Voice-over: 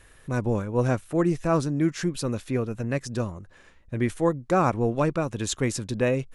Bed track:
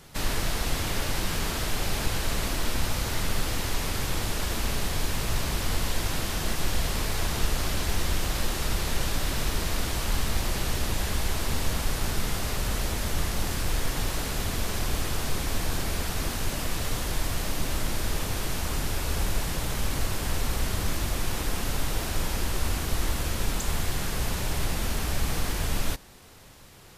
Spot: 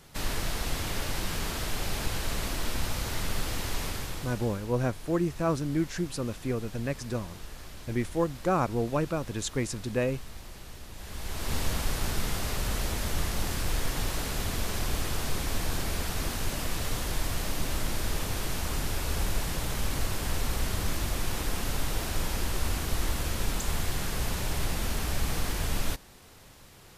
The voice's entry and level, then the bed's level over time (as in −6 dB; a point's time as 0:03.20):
3.95 s, −4.5 dB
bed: 0:03.85 −3.5 dB
0:04.69 −17 dB
0:10.91 −17 dB
0:11.55 −2 dB